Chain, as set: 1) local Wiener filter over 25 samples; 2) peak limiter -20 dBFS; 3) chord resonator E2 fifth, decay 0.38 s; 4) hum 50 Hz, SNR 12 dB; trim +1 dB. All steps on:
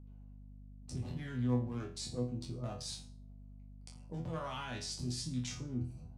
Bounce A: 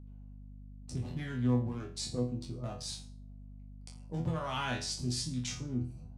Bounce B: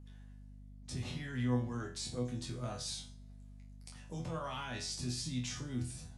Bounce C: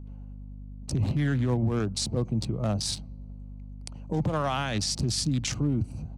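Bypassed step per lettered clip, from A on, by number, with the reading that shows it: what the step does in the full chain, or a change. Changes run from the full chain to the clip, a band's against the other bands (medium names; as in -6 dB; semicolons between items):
2, mean gain reduction 2.5 dB; 1, 2 kHz band +3.0 dB; 3, 250 Hz band -2.0 dB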